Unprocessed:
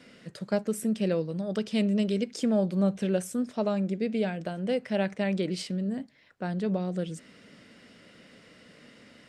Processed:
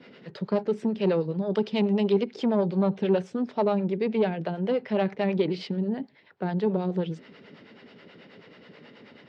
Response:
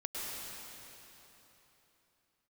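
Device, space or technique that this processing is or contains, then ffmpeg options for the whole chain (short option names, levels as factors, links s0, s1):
guitar amplifier with harmonic tremolo: -filter_complex "[0:a]acrossover=split=490[s0][s1];[s0]aeval=exprs='val(0)*(1-0.7/2+0.7/2*cos(2*PI*9.3*n/s))':c=same[s2];[s1]aeval=exprs='val(0)*(1-0.7/2-0.7/2*cos(2*PI*9.3*n/s))':c=same[s3];[s2][s3]amix=inputs=2:normalize=0,asoftclip=type=tanh:threshold=0.0668,highpass=94,equalizer=f=160:t=q:w=4:g=3,equalizer=f=400:t=q:w=4:g=9,equalizer=f=870:t=q:w=4:g=9,lowpass=f=4400:w=0.5412,lowpass=f=4400:w=1.3066,volume=1.78"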